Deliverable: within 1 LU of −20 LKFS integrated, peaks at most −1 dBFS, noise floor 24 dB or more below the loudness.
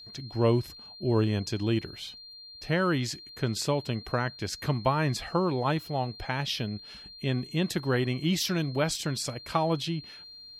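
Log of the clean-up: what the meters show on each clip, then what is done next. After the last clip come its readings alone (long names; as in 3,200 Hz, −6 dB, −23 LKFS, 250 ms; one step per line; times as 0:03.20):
interfering tone 4,200 Hz; level of the tone −45 dBFS; integrated loudness −29.5 LKFS; sample peak −12.0 dBFS; target loudness −20.0 LKFS
→ notch filter 4,200 Hz, Q 30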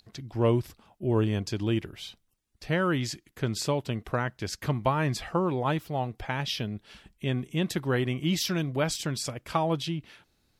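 interfering tone none found; integrated loudness −29.5 LKFS; sample peak −12.0 dBFS; target loudness −20.0 LKFS
→ level +9.5 dB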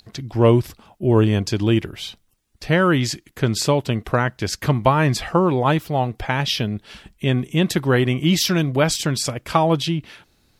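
integrated loudness −20.0 LKFS; sample peak −2.5 dBFS; background noise floor −62 dBFS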